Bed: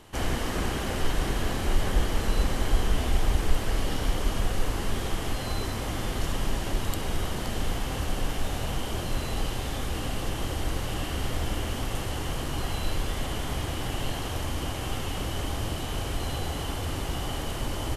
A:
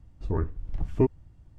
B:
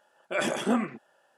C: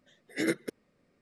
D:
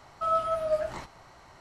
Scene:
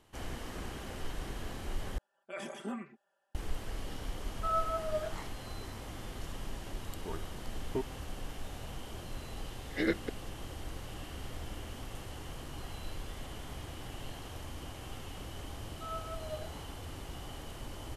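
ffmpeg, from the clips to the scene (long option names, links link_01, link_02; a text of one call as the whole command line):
ffmpeg -i bed.wav -i cue0.wav -i cue1.wav -i cue2.wav -i cue3.wav -filter_complex "[4:a]asplit=2[link_01][link_02];[0:a]volume=-13dB[link_03];[2:a]aecho=1:1:5.1:0.69[link_04];[link_01]equalizer=frequency=470:width=2.1:gain=-8[link_05];[1:a]equalizer=frequency=88:width=0.4:gain=-15[link_06];[3:a]aresample=11025,aresample=44100[link_07];[link_03]asplit=2[link_08][link_09];[link_08]atrim=end=1.984[link_10];[link_04]atrim=end=1.37,asetpts=PTS-STARTPTS,volume=-16.5dB[link_11];[link_09]atrim=start=3.346[link_12];[link_05]atrim=end=1.6,asetpts=PTS-STARTPTS,volume=-5dB,afade=type=in:duration=0.004:curve=hsin,afade=type=out:start_time=1.596:duration=0.004:curve=hsin,adelay=4220[link_13];[link_06]atrim=end=1.58,asetpts=PTS-STARTPTS,volume=-7dB,afade=type=in:duration=0.004:curve=hsin,afade=type=out:start_time=1.576:duration=0.004:curve=hsin,adelay=6750[link_14];[link_07]atrim=end=1.21,asetpts=PTS-STARTPTS,volume=-1.5dB,afade=type=in:duration=0.004:curve=hsin,afade=type=out:start_time=1.206:duration=0.004:curve=hsin,adelay=9400[link_15];[link_02]atrim=end=1.6,asetpts=PTS-STARTPTS,volume=-15.5dB,afade=type=in:duration=0.004:curve=hsin,afade=type=out:start_time=1.596:duration=0.004:curve=hsin,adelay=15600[link_16];[link_10][link_11]acrossfade=duration=0.004:curve1=hsin:curve2=hsin[link_17];[link_17][link_12]acrossfade=duration=0.004:curve1=hsin:curve2=hsin[link_18];[link_18][link_13][link_14][link_15][link_16]amix=inputs=5:normalize=0" out.wav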